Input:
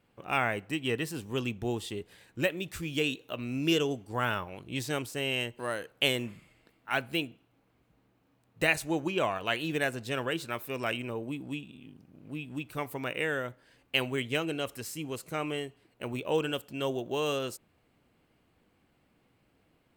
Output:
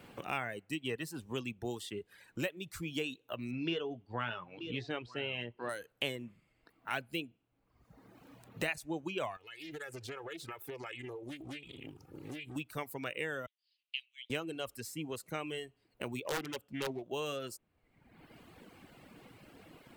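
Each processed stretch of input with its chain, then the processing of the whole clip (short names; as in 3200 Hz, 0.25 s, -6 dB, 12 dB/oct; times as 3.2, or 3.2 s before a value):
3.51–5.69 LPF 4000 Hz 24 dB/oct + doubler 17 ms -11 dB + echo 0.93 s -17 dB
9.36–12.56 comb 2.3 ms, depth 79% + compressor, threshold -43 dBFS + Doppler distortion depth 0.42 ms
13.46–14.3 steep high-pass 2800 Hz + air absorption 260 m
16.25–17.03 low shelf 61 Hz +7.5 dB + wrapped overs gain 21 dB + Doppler distortion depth 0.36 ms
whole clip: reverb removal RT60 1 s; three-band squash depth 70%; gain -5.5 dB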